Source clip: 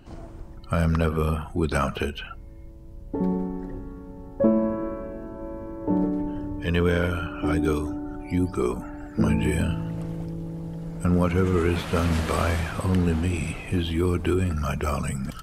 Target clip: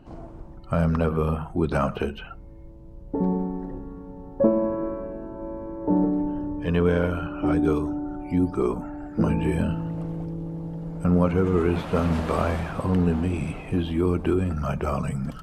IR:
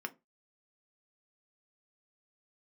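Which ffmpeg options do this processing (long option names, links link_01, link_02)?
-filter_complex "[0:a]highshelf=frequency=3100:gain=-11,asplit=2[link_01][link_02];[1:a]atrim=start_sample=2205,asetrate=25578,aresample=44100,lowpass=frequency=2800:width=0.5412,lowpass=frequency=2800:width=1.3066[link_03];[link_02][link_03]afir=irnorm=-1:irlink=0,volume=-13dB[link_04];[link_01][link_04]amix=inputs=2:normalize=0"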